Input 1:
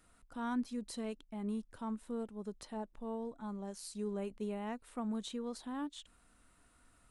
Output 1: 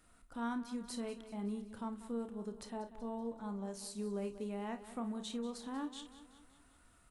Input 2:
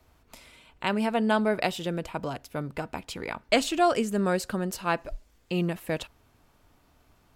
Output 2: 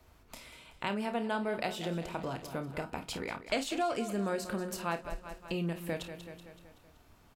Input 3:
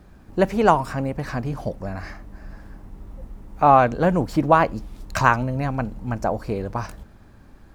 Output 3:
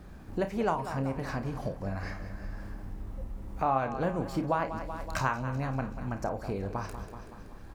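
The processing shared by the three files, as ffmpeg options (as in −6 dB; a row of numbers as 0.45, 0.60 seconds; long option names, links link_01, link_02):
-filter_complex "[0:a]asplit=2[link_01][link_02];[link_02]aecho=0:1:189|378|567|756|945:0.188|0.102|0.0549|0.0297|0.016[link_03];[link_01][link_03]amix=inputs=2:normalize=0,acompressor=threshold=-37dB:ratio=2,asplit=2[link_04][link_05];[link_05]aecho=0:1:30|52:0.316|0.188[link_06];[link_04][link_06]amix=inputs=2:normalize=0"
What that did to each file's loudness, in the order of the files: −1.0, −7.5, −12.0 LU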